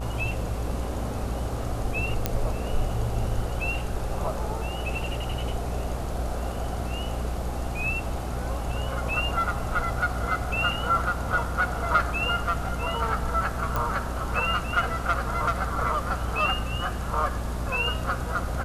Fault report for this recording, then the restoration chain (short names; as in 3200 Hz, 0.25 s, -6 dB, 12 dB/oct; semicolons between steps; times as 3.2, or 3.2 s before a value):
buzz 60 Hz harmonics 24 -32 dBFS
2.26 pop -8 dBFS
13.76 pop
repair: de-click; de-hum 60 Hz, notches 24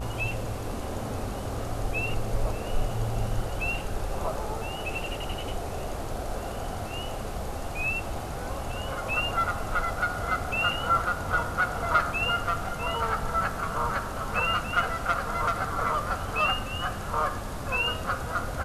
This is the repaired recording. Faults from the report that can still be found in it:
none